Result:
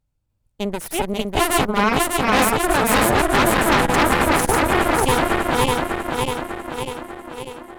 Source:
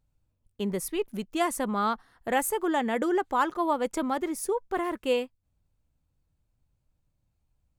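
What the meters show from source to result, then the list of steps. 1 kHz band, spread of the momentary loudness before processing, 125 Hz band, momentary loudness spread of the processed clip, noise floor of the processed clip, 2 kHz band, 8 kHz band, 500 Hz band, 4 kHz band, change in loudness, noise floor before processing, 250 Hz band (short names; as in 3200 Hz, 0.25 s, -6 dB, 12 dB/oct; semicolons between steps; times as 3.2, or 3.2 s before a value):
+11.5 dB, 6 LU, n/a, 13 LU, -70 dBFS, +16.0 dB, +13.5 dB, +9.0 dB, +16.5 dB, +10.0 dB, -76 dBFS, +9.5 dB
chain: regenerating reverse delay 0.298 s, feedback 81%, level 0 dB; added harmonics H 4 -7 dB, 8 -12 dB, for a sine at -8 dBFS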